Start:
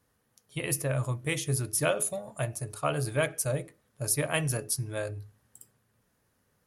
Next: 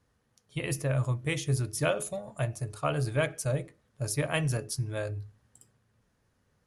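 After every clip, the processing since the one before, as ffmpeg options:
-af "lowpass=7800,lowshelf=f=110:g=7.5,volume=0.891"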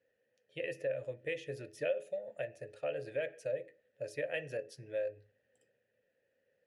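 -filter_complex "[0:a]asplit=3[s0][s1][s2];[s0]bandpass=f=530:t=q:w=8,volume=1[s3];[s1]bandpass=f=1840:t=q:w=8,volume=0.501[s4];[s2]bandpass=f=2480:t=q:w=8,volume=0.355[s5];[s3][s4][s5]amix=inputs=3:normalize=0,acompressor=threshold=0.00631:ratio=2,volume=2.37"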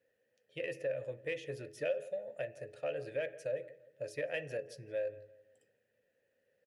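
-filter_complex "[0:a]asplit=2[s0][s1];[s1]adelay=169,lowpass=f=1900:p=1,volume=0.119,asplit=2[s2][s3];[s3]adelay=169,lowpass=f=1900:p=1,volume=0.4,asplit=2[s4][s5];[s5]adelay=169,lowpass=f=1900:p=1,volume=0.4[s6];[s0][s2][s4][s6]amix=inputs=4:normalize=0,asplit=2[s7][s8];[s8]asoftclip=type=tanh:threshold=0.0133,volume=0.266[s9];[s7][s9]amix=inputs=2:normalize=0,volume=0.841"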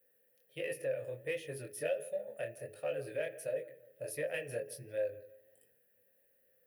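-filter_complex "[0:a]flanger=delay=19:depth=7.3:speed=1.4,acrossover=split=440[s0][s1];[s1]aexciter=amount=12.9:drive=3.4:freq=9700[s2];[s0][s2]amix=inputs=2:normalize=0,volume=1.41"

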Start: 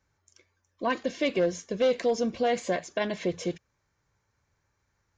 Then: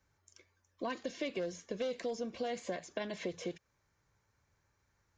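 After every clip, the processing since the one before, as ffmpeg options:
-filter_complex "[0:a]acrossover=split=330|3900[s0][s1][s2];[s0]acompressor=threshold=0.00631:ratio=4[s3];[s1]acompressor=threshold=0.0141:ratio=4[s4];[s2]acompressor=threshold=0.00251:ratio=4[s5];[s3][s4][s5]amix=inputs=3:normalize=0,volume=0.841"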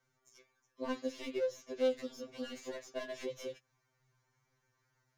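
-filter_complex "[0:a]acrossover=split=1000[s0][s1];[s1]aeval=exprs='clip(val(0),-1,0.00299)':c=same[s2];[s0][s2]amix=inputs=2:normalize=0,afftfilt=real='re*2.45*eq(mod(b,6),0)':imag='im*2.45*eq(mod(b,6),0)':win_size=2048:overlap=0.75,volume=1.19"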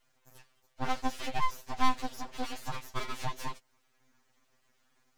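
-af "aeval=exprs='abs(val(0))':c=same,volume=2.66"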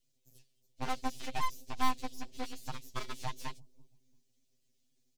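-filter_complex "[0:a]acrossover=split=480|3000[s0][s1][s2];[s0]aecho=1:1:337|674:0.141|0.0339[s3];[s1]acrusher=bits=5:mix=0:aa=0.5[s4];[s3][s4][s2]amix=inputs=3:normalize=0,volume=0.668"

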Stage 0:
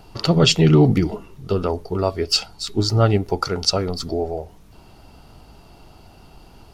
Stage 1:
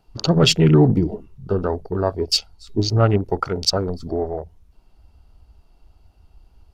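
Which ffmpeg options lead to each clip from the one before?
-af "afwtdn=0.0398"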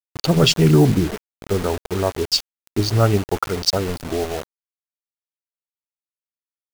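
-af "acrusher=bits=4:mix=0:aa=0.000001"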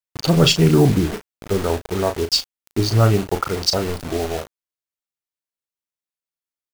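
-filter_complex "[0:a]asplit=2[s0][s1];[s1]adelay=36,volume=0.376[s2];[s0][s2]amix=inputs=2:normalize=0"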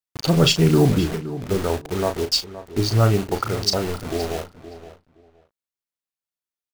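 -filter_complex "[0:a]asplit=2[s0][s1];[s1]adelay=519,lowpass=f=3400:p=1,volume=0.2,asplit=2[s2][s3];[s3]adelay=519,lowpass=f=3400:p=1,volume=0.19[s4];[s0][s2][s4]amix=inputs=3:normalize=0,volume=0.794"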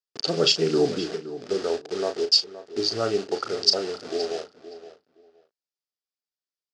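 -af "highpass=330,equalizer=f=420:t=q:w=4:g=6,equalizer=f=980:t=q:w=4:g=-9,equalizer=f=2200:t=q:w=4:g=-5,equalizer=f=4900:t=q:w=4:g=9,lowpass=f=7000:w=0.5412,lowpass=f=7000:w=1.3066,volume=0.631"

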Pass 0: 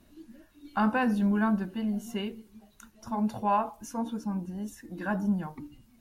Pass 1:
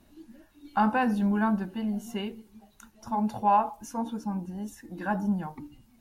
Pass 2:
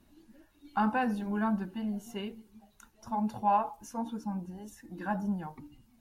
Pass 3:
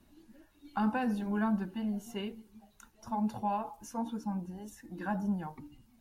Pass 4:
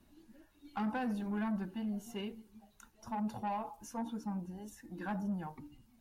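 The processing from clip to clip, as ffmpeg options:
-af "equalizer=f=830:w=5.4:g=6.5"
-af "flanger=delay=0.6:depth=1.9:regen=-65:speed=1.2:shape=triangular"
-filter_complex "[0:a]acrossover=split=470|3000[s0][s1][s2];[s1]acompressor=threshold=0.0224:ratio=6[s3];[s0][s3][s2]amix=inputs=3:normalize=0"
-af "asoftclip=type=tanh:threshold=0.0398,volume=0.794"

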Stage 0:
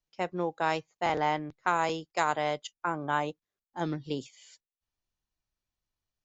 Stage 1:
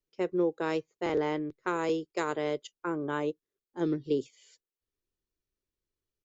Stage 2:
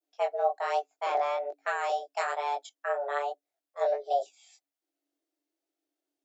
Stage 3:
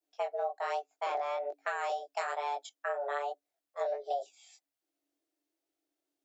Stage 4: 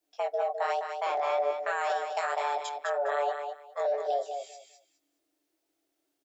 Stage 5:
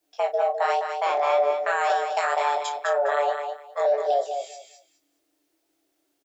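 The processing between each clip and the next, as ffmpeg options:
-af "firequalizer=gain_entry='entry(190,0);entry(400,12);entry(730,-9);entry(1100,-3)':delay=0.05:min_phase=1,volume=0.794"
-af "flanger=delay=18.5:depth=5.3:speed=1.2,afreqshift=280,adynamicequalizer=threshold=0.00282:dfrequency=2800:dqfactor=0.79:tfrequency=2800:tqfactor=0.79:attack=5:release=100:ratio=0.375:range=2:mode=cutabove:tftype=bell,volume=1.58"
-af "acompressor=threshold=0.0282:ratio=4"
-filter_complex "[0:a]alimiter=level_in=1.68:limit=0.0631:level=0:latency=1:release=15,volume=0.596,asplit=2[s0][s1];[s1]aecho=0:1:206|412|618:0.473|0.0899|0.0171[s2];[s0][s2]amix=inputs=2:normalize=0,volume=2.11"
-filter_complex "[0:a]asplit=2[s0][s1];[s1]adelay=34,volume=0.299[s2];[s0][s2]amix=inputs=2:normalize=0,volume=2"

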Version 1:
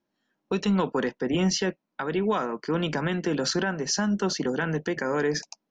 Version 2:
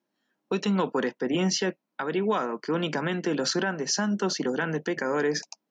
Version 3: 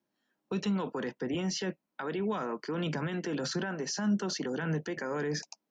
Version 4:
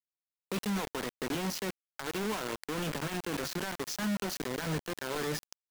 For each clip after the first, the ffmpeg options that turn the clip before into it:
-af "highpass=170"
-filter_complex "[0:a]acrossover=split=140[s0][s1];[s0]aphaser=in_gain=1:out_gain=1:delay=1.2:decay=0.7:speed=1.7:type=sinusoidal[s2];[s1]alimiter=limit=0.0668:level=0:latency=1:release=19[s3];[s2][s3]amix=inputs=2:normalize=0,volume=0.708"
-filter_complex "[0:a]asplit=2[s0][s1];[s1]asoftclip=type=hard:threshold=0.02,volume=0.316[s2];[s0][s2]amix=inputs=2:normalize=0,acrusher=bits=4:mix=0:aa=0.000001,volume=0.562"

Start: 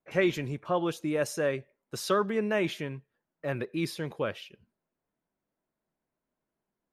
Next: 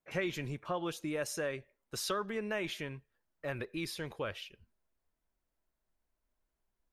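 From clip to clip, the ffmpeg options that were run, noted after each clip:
-af "equalizer=f=380:w=0.39:g=-4.5,acompressor=threshold=0.0224:ratio=2.5,asubboost=boost=9:cutoff=53"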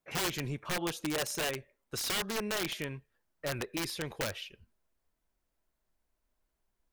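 -af "aeval=exprs='(mod(29.9*val(0)+1,2)-1)/29.9':c=same,volume=1.41"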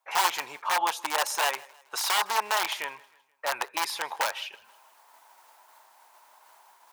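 -af "areverse,acompressor=mode=upward:threshold=0.00891:ratio=2.5,areverse,highpass=f=890:t=q:w=4.9,aecho=1:1:159|318|477:0.0631|0.0284|0.0128,volume=1.88"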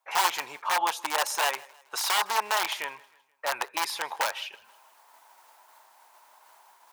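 -af anull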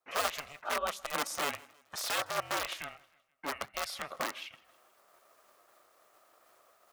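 -af "aeval=exprs='val(0)*sin(2*PI*290*n/s)':c=same,volume=0.596"

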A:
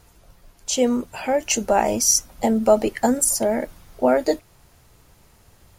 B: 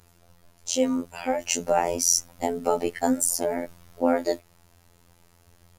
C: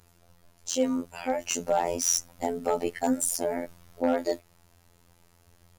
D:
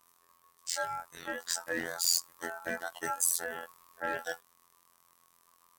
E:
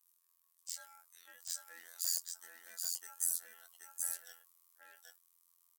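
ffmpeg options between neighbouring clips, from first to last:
-af "afftfilt=real='hypot(re,im)*cos(PI*b)':imag='0':win_size=2048:overlap=0.75,volume=0.891"
-af "asoftclip=type=hard:threshold=0.251,volume=0.75"
-af "crystalizer=i=2:c=0,aeval=exprs='val(0)*sin(2*PI*1100*n/s)':c=same,volume=0.447"
-filter_complex "[0:a]aderivative,asplit=2[s0][s1];[s1]aecho=0:1:779:0.668[s2];[s0][s2]amix=inputs=2:normalize=0,volume=0.422"

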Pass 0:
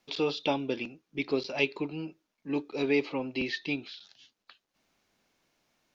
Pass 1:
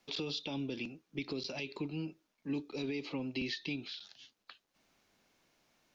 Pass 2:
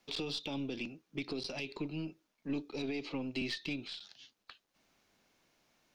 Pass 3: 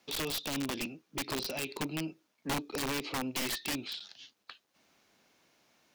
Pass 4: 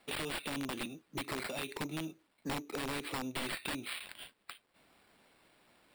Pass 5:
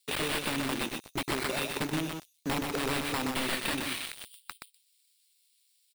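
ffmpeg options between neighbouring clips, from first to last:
-filter_complex "[0:a]alimiter=level_in=1.06:limit=0.0631:level=0:latency=1:release=69,volume=0.944,acrossover=split=280|3000[s0][s1][s2];[s1]acompressor=threshold=0.00562:ratio=6[s3];[s0][s3][s2]amix=inputs=3:normalize=0,volume=1.12"
-af "aeval=exprs='0.0668*(cos(1*acos(clip(val(0)/0.0668,-1,1)))-cos(1*PI/2))+0.00299*(cos(6*acos(clip(val(0)/0.0668,-1,1)))-cos(6*PI/2))':c=same"
-af "highpass=f=130:p=1,aeval=exprs='(mod(39.8*val(0)+1,2)-1)/39.8':c=same,volume=1.68"
-af "acrusher=samples=7:mix=1:aa=0.000001,acompressor=threshold=0.01:ratio=2.5,volume=1.26"
-filter_complex "[0:a]aecho=1:1:124|248|372:0.631|0.145|0.0334,acrossover=split=4100[s0][s1];[s0]aeval=exprs='val(0)*gte(abs(val(0)),0.0075)':c=same[s2];[s2][s1]amix=inputs=2:normalize=0,volume=2"

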